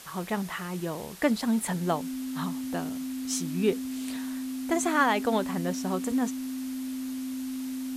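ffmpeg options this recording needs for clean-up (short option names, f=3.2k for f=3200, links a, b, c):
-af "adeclick=t=4,bandreject=f=260:w=30,afwtdn=0.005"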